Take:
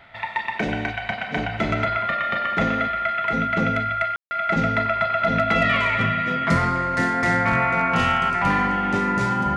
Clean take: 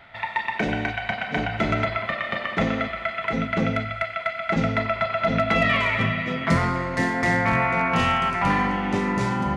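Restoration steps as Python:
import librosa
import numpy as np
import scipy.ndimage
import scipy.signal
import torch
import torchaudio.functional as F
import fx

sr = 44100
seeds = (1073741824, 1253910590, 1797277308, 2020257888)

y = fx.notch(x, sr, hz=1400.0, q=30.0)
y = fx.fix_ambience(y, sr, seeds[0], print_start_s=0.0, print_end_s=0.5, start_s=4.16, end_s=4.31)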